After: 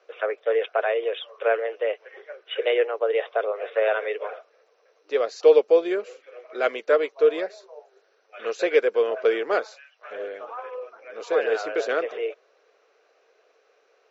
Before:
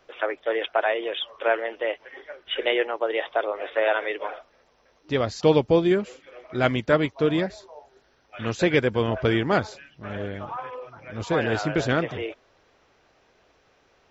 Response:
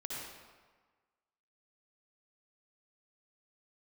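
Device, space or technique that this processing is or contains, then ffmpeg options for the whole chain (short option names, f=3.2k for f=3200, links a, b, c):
phone speaker on a table: -filter_complex "[0:a]asplit=3[a][b][c];[a]afade=t=out:st=9.64:d=0.02[d];[b]highpass=f=690:w=0.5412,highpass=f=690:w=1.3066,afade=t=in:st=9.64:d=0.02,afade=t=out:st=10.1:d=0.02[e];[c]afade=t=in:st=10.1:d=0.02[f];[d][e][f]amix=inputs=3:normalize=0,highpass=f=450:w=0.5412,highpass=f=450:w=1.3066,equalizer=f=450:t=q:w=4:g=9,equalizer=f=900:t=q:w=4:g=-8,equalizer=f=1.9k:t=q:w=4:g=-4,equalizer=f=3.3k:t=q:w=4:g=-7,equalizer=f=5k:t=q:w=4:g=-4,lowpass=f=6.5k:w=0.5412,lowpass=f=6.5k:w=1.3066"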